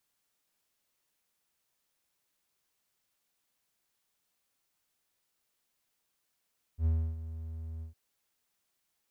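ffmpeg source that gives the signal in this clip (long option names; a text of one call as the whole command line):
ffmpeg -f lavfi -i "aevalsrc='0.0841*(1-4*abs(mod(80.5*t+0.25,1)-0.5))':duration=1.159:sample_rate=44100,afade=type=in:duration=0.077,afade=type=out:start_time=0.077:duration=0.297:silence=0.2,afade=type=out:start_time=1.04:duration=0.119" out.wav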